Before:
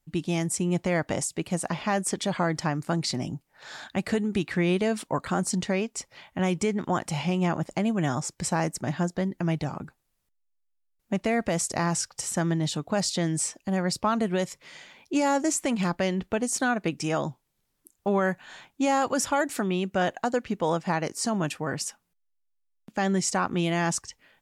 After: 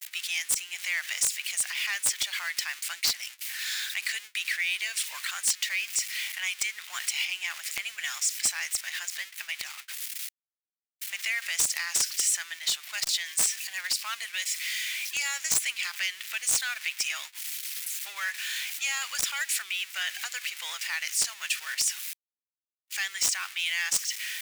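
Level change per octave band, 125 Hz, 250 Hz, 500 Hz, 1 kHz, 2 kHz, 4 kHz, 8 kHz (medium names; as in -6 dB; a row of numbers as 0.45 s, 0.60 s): under -30 dB, under -35 dB, -28.5 dB, -14.5 dB, +4.0 dB, +7.0 dB, +5.5 dB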